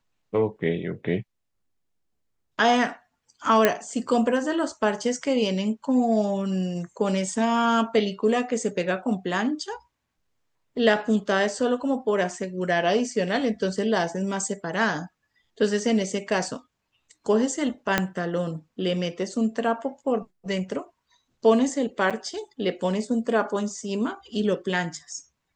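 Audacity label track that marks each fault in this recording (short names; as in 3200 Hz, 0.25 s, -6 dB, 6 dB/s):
3.650000	3.650000	pop -4 dBFS
17.980000	17.980000	pop -5 dBFS
22.100000	22.110000	gap 6.5 ms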